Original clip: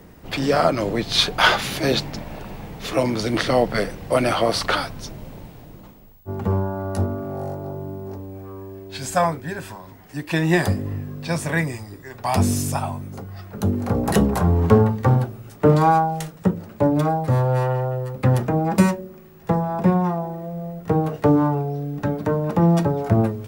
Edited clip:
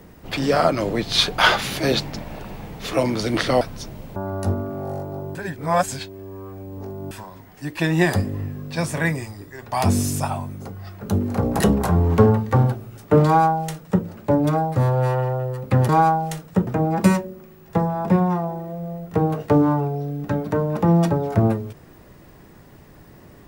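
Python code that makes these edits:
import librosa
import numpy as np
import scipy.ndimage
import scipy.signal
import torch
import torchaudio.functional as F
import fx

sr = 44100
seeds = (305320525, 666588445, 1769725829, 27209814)

y = fx.edit(x, sr, fx.cut(start_s=3.61, length_s=1.23),
    fx.cut(start_s=5.39, length_s=1.29),
    fx.reverse_span(start_s=7.87, length_s=1.76),
    fx.duplicate(start_s=15.78, length_s=0.78, to_s=18.41), tone=tone)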